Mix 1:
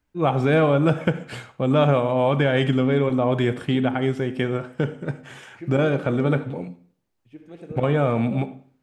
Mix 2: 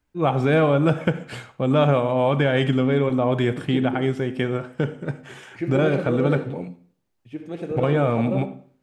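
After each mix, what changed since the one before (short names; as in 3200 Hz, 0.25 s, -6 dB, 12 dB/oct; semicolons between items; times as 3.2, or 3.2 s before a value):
second voice +9.5 dB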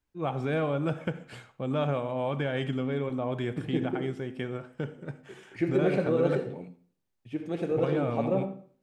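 first voice -10.5 dB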